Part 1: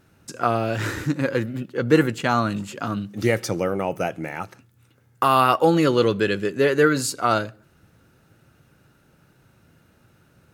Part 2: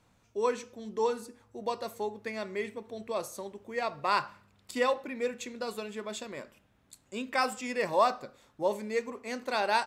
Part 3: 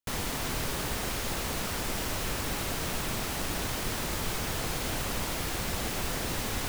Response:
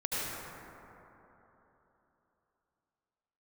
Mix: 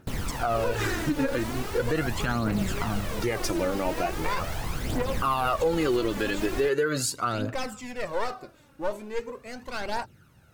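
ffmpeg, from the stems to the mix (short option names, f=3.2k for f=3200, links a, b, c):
-filter_complex "[0:a]volume=-2.5dB[a];[1:a]lowshelf=f=380:g=6,aeval=exprs='clip(val(0),-1,0.0211)':c=same,adelay=200,volume=-2.5dB[b];[2:a]highshelf=f=2.4k:g=-8.5,volume=-0.5dB[c];[a][b][c]amix=inputs=3:normalize=0,aphaser=in_gain=1:out_gain=1:delay=3.7:decay=0.57:speed=0.4:type=triangular,alimiter=limit=-16.5dB:level=0:latency=1:release=110"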